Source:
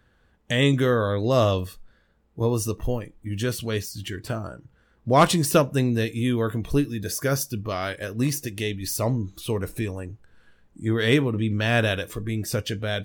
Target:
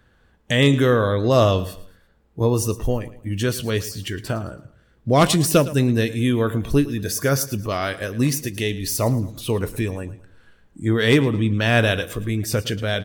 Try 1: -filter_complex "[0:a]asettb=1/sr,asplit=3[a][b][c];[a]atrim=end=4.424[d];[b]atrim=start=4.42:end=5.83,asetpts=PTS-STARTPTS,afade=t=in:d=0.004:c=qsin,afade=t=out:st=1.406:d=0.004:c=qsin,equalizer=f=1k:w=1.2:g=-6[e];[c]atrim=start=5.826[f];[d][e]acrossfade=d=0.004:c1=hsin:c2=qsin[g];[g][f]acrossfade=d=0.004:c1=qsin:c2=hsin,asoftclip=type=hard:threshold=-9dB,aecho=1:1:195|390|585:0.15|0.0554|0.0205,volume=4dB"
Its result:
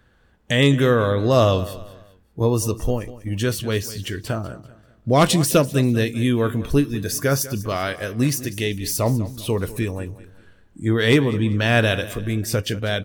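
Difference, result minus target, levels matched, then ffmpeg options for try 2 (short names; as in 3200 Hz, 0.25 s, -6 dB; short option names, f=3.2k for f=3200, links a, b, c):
echo 84 ms late
-filter_complex "[0:a]asettb=1/sr,asplit=3[a][b][c];[a]atrim=end=4.424[d];[b]atrim=start=4.42:end=5.83,asetpts=PTS-STARTPTS,afade=t=in:d=0.004:c=qsin,afade=t=out:st=1.406:d=0.004:c=qsin,equalizer=f=1k:w=1.2:g=-6[e];[c]atrim=start=5.826[f];[d][e]acrossfade=d=0.004:c1=hsin:c2=qsin[g];[g][f]acrossfade=d=0.004:c1=qsin:c2=hsin,asoftclip=type=hard:threshold=-9dB,aecho=1:1:111|222|333:0.15|0.0554|0.0205,volume=4dB"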